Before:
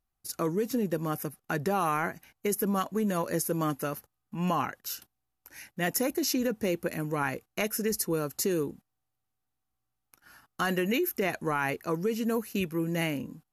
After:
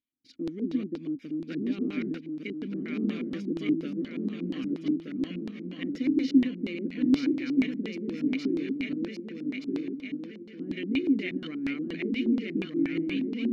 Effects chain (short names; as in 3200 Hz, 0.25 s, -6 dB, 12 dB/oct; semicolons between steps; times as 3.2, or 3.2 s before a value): regenerating reverse delay 0.613 s, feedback 72%, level -1 dB; vowel filter i; LFO low-pass square 4.2 Hz 330–4100 Hz; gain +5.5 dB